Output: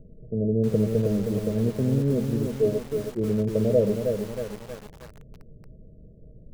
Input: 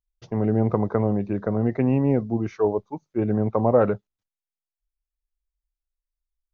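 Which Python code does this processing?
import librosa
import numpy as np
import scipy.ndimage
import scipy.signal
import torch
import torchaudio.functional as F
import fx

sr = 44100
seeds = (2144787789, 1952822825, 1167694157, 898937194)

y = fx.dmg_noise_colour(x, sr, seeds[0], colour='brown', level_db=-40.0)
y = scipy.signal.sosfilt(scipy.signal.cheby1(6, 9, 650.0, 'lowpass', fs=sr, output='sos'), y)
y = fx.echo_crushed(y, sr, ms=316, feedback_pct=55, bits=7, wet_db=-5.0)
y = y * librosa.db_to_amplitude(2.0)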